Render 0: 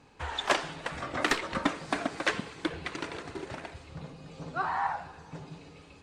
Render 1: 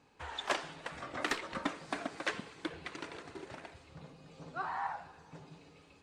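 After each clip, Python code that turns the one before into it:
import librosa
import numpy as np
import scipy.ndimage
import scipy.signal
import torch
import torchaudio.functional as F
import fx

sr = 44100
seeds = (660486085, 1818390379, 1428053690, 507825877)

y = fx.low_shelf(x, sr, hz=110.0, db=-6.5)
y = y * 10.0 ** (-7.0 / 20.0)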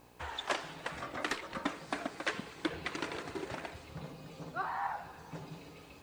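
y = fx.rider(x, sr, range_db=5, speed_s=0.5)
y = fx.quant_dither(y, sr, seeds[0], bits=12, dither='triangular')
y = fx.dmg_buzz(y, sr, base_hz=60.0, harmonics=18, level_db=-65.0, tilt_db=-2, odd_only=False)
y = y * 10.0 ** (1.5 / 20.0)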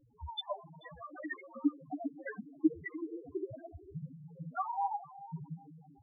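y = fx.echo_diffused(x, sr, ms=470, feedback_pct=46, wet_db=-12.5)
y = fx.spec_topn(y, sr, count=2)
y = fx.upward_expand(y, sr, threshold_db=-53.0, expansion=1.5)
y = y * 10.0 ** (12.5 / 20.0)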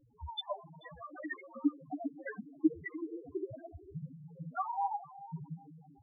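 y = x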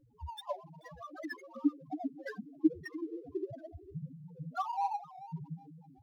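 y = scipy.signal.medfilt(x, 15)
y = fx.record_warp(y, sr, rpm=78.0, depth_cents=100.0)
y = y * 10.0 ** (1.0 / 20.0)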